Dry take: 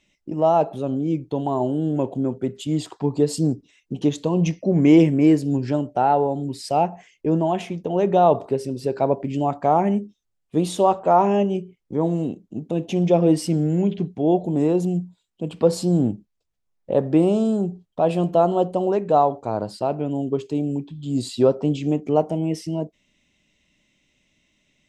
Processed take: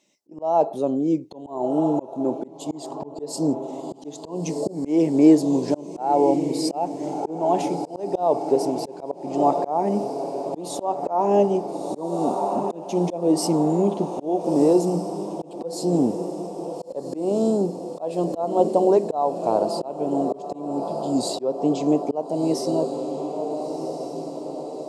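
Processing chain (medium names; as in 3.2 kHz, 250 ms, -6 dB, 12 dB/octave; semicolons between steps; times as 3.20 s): high-pass 300 Hz 12 dB/octave; high-order bell 2.1 kHz -10.5 dB; on a send: echo that smears into a reverb 1387 ms, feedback 58%, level -11 dB; on the sum: slow attack 331 ms; trim +5 dB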